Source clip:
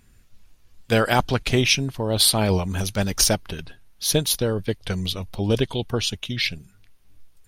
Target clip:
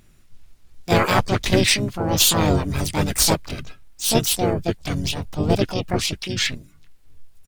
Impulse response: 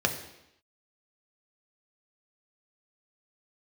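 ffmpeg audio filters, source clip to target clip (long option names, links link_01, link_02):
-filter_complex "[0:a]aeval=exprs='0.708*(cos(1*acos(clip(val(0)/0.708,-1,1)))-cos(1*PI/2))+0.0708*(cos(2*acos(clip(val(0)/0.708,-1,1)))-cos(2*PI/2))+0.00398*(cos(3*acos(clip(val(0)/0.708,-1,1)))-cos(3*PI/2))+0.0708*(cos(4*acos(clip(val(0)/0.708,-1,1)))-cos(4*PI/2))+0.0158*(cos(5*acos(clip(val(0)/0.708,-1,1)))-cos(5*PI/2))':channel_layout=same,asplit=3[link_01][link_02][link_03];[link_02]asetrate=35002,aresample=44100,atempo=1.25992,volume=-1dB[link_04];[link_03]asetrate=66075,aresample=44100,atempo=0.66742,volume=0dB[link_05];[link_01][link_04][link_05]amix=inputs=3:normalize=0,volume=-3.5dB"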